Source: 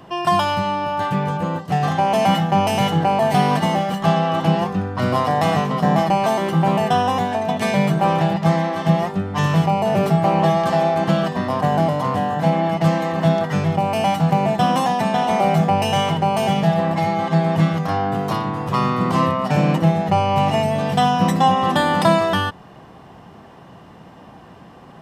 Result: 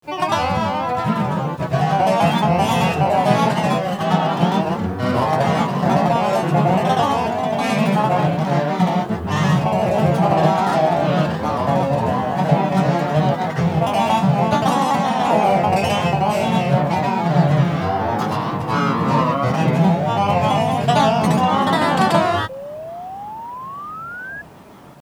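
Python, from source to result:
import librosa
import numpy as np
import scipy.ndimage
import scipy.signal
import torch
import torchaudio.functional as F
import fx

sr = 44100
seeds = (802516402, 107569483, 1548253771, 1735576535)

y = fx.granulator(x, sr, seeds[0], grain_ms=168.0, per_s=23.0, spray_ms=100.0, spread_st=3)
y = fx.spec_paint(y, sr, seeds[1], shape='rise', start_s=22.49, length_s=1.93, low_hz=520.0, high_hz=1700.0, level_db=-36.0)
y = fx.quant_dither(y, sr, seeds[2], bits=10, dither='none')
y = y * librosa.db_to_amplitude(5.0)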